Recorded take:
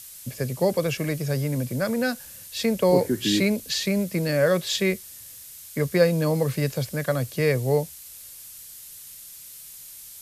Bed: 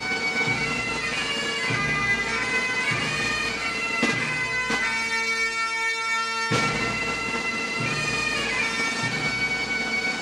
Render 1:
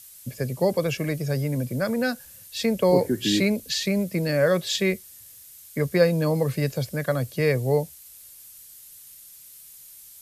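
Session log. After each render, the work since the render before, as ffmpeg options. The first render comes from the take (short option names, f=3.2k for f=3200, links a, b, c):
-af "afftdn=nr=6:nf=-43"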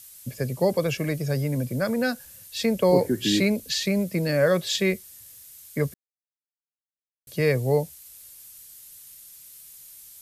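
-filter_complex "[0:a]asplit=3[a][b][c];[a]atrim=end=5.94,asetpts=PTS-STARTPTS,afade=t=out:st=5.936:d=0.004:c=hsin[d];[b]atrim=start=5.94:end=7.27,asetpts=PTS-STARTPTS,volume=0[e];[c]atrim=start=7.27,asetpts=PTS-STARTPTS,afade=t=in:d=0.004:c=hsin[f];[d][e][f]concat=n=3:v=0:a=1"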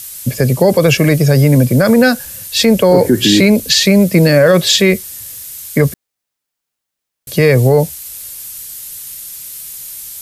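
-af "acontrast=37,alimiter=level_in=12dB:limit=-1dB:release=50:level=0:latency=1"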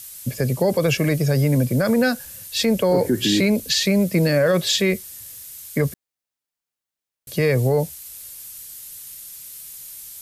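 -af "volume=-9dB"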